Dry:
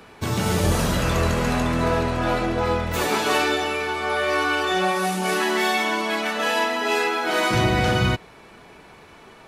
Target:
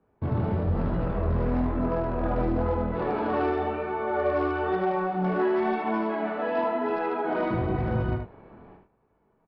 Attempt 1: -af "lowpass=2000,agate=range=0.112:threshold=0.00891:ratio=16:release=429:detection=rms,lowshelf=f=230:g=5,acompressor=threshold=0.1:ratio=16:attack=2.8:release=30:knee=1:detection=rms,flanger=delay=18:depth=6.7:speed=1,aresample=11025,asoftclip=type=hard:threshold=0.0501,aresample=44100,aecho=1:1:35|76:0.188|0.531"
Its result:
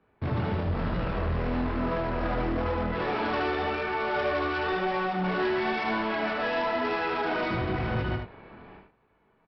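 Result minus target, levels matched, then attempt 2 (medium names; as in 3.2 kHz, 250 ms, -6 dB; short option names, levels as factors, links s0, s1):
hard clipper: distortion +14 dB; 2 kHz band +6.5 dB
-af "lowpass=970,agate=range=0.112:threshold=0.00891:ratio=16:release=429:detection=rms,lowshelf=f=230:g=5,acompressor=threshold=0.1:ratio=16:attack=2.8:release=30:knee=1:detection=rms,flanger=delay=18:depth=6.7:speed=1,aresample=11025,asoftclip=type=hard:threshold=0.1,aresample=44100,aecho=1:1:35|76:0.188|0.531"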